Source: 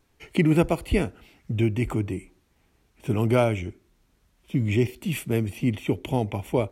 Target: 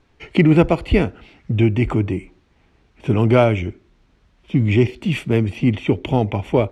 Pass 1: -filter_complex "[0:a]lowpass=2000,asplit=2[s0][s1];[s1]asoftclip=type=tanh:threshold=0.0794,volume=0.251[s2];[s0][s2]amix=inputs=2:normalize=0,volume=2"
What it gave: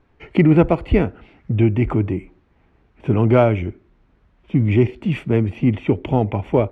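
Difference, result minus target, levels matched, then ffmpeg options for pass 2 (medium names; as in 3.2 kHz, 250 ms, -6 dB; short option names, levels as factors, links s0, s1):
4 kHz band -7.0 dB
-filter_complex "[0:a]lowpass=4200,asplit=2[s0][s1];[s1]asoftclip=type=tanh:threshold=0.0794,volume=0.251[s2];[s0][s2]amix=inputs=2:normalize=0,volume=2"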